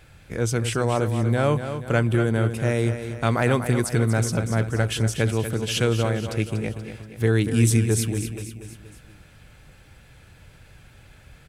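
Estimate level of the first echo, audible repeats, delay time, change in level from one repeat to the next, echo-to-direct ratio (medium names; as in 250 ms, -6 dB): -9.5 dB, 4, 239 ms, -6.0 dB, -8.0 dB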